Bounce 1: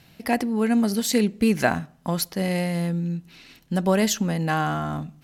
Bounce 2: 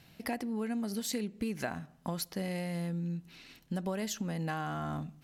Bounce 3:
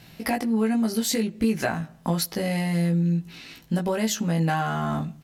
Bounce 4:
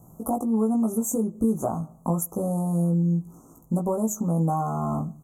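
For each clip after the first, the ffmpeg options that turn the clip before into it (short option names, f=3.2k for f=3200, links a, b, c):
-af "acompressor=threshold=-27dB:ratio=5,volume=-5.5dB"
-filter_complex "[0:a]asplit=2[a][b];[b]adelay=18,volume=-2.5dB[c];[a][c]amix=inputs=2:normalize=0,volume=8.5dB"
-af "asuperstop=centerf=2900:order=20:qfactor=0.56"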